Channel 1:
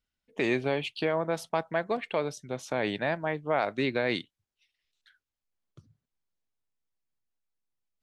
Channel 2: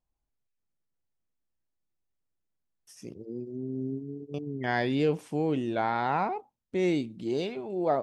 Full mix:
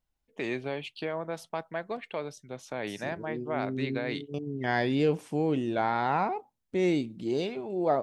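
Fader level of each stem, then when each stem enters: -5.5 dB, +0.5 dB; 0.00 s, 0.00 s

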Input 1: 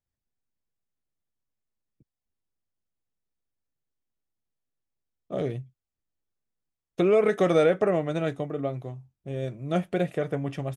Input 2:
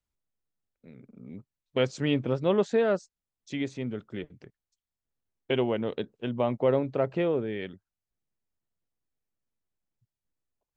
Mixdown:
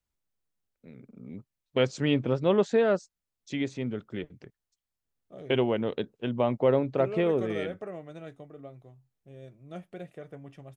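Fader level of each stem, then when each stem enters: -15.5 dB, +1.0 dB; 0.00 s, 0.00 s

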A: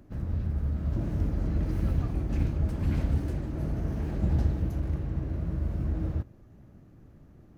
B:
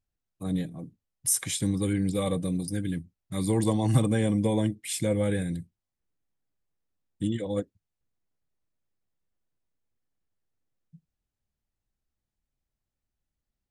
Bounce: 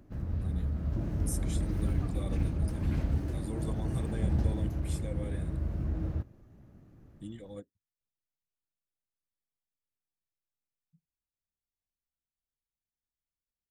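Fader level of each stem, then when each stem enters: -3.0 dB, -15.0 dB; 0.00 s, 0.00 s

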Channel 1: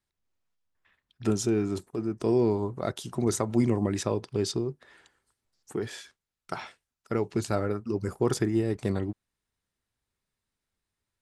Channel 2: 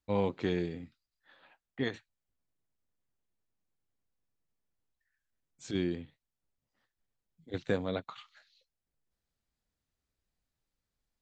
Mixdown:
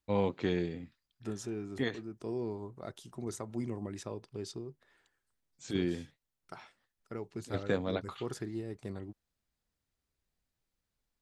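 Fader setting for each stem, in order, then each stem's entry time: -13.0 dB, 0.0 dB; 0.00 s, 0.00 s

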